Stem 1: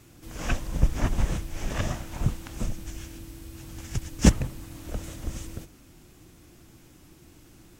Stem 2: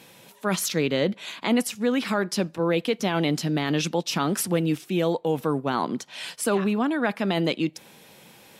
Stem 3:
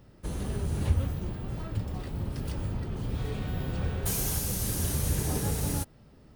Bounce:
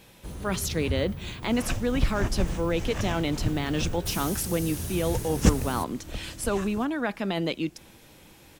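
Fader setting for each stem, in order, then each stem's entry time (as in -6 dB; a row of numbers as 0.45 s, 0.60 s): -3.0 dB, -4.0 dB, -4.5 dB; 1.20 s, 0.00 s, 0.00 s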